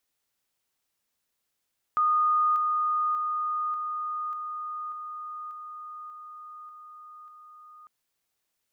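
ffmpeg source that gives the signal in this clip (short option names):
-f lavfi -i "aevalsrc='pow(10,(-20-3*floor(t/0.59))/20)*sin(2*PI*1230*t)':d=5.9:s=44100"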